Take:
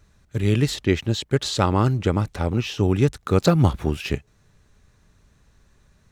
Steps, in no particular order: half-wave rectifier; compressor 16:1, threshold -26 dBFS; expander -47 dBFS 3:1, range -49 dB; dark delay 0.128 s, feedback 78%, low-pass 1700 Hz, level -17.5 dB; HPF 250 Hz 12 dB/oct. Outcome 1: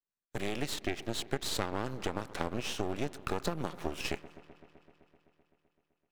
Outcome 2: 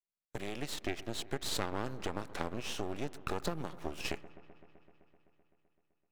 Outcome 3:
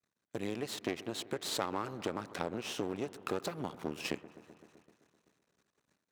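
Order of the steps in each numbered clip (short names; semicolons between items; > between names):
HPF > expander > compressor > dark delay > half-wave rectifier; compressor > HPF > half-wave rectifier > expander > dark delay; compressor > half-wave rectifier > dark delay > expander > HPF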